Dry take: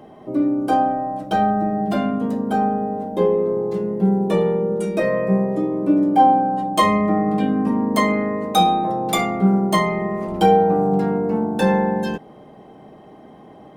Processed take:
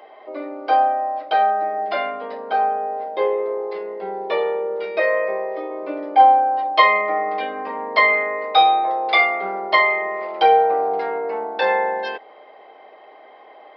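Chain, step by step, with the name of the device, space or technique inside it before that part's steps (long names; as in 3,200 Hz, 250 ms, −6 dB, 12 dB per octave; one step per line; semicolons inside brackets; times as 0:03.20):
0:05.30–0:05.71: Chebyshev high-pass filter 300 Hz, order 2
musical greeting card (downsampling to 11,025 Hz; high-pass filter 500 Hz 24 dB per octave; parametric band 2,100 Hz +9 dB 0.32 octaves)
level +2.5 dB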